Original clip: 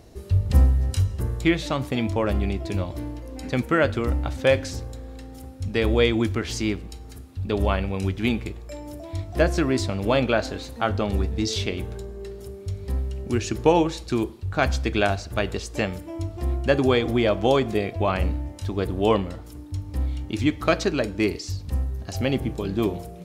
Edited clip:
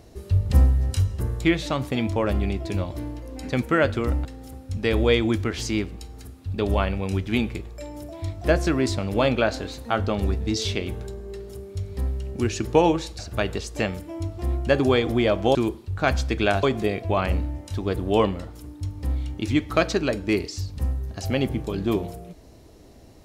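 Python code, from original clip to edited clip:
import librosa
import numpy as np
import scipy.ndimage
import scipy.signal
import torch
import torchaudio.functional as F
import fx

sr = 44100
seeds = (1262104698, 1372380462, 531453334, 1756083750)

y = fx.edit(x, sr, fx.cut(start_s=4.25, length_s=0.91),
    fx.move(start_s=14.1, length_s=1.08, to_s=17.54), tone=tone)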